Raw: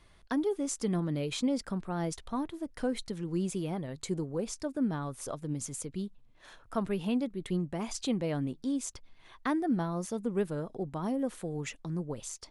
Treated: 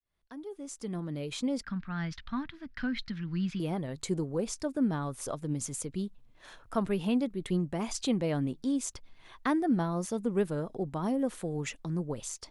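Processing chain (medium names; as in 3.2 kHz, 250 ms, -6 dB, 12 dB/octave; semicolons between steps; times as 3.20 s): fade-in on the opening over 2.28 s; 1.63–3.60 s: FFT filter 250 Hz 0 dB, 410 Hz -21 dB, 980 Hz -6 dB, 1.6 kHz +7 dB, 3 kHz +2 dB, 5 kHz -2 dB, 8.3 kHz -25 dB; trim +2 dB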